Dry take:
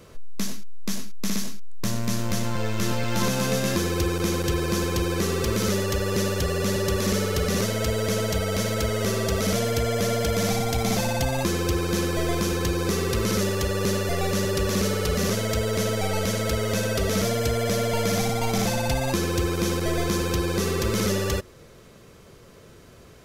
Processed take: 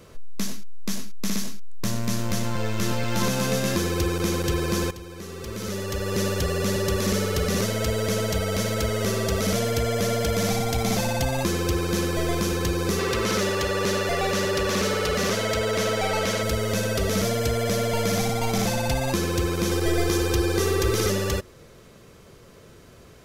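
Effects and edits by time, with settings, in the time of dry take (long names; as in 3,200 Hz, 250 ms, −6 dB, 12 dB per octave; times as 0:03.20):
0:04.91–0:06.25: fade in quadratic, from −15 dB
0:12.99–0:16.43: mid-hump overdrive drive 12 dB, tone 3,700 Hz, clips at −13 dBFS
0:19.71–0:21.10: comb filter 2.5 ms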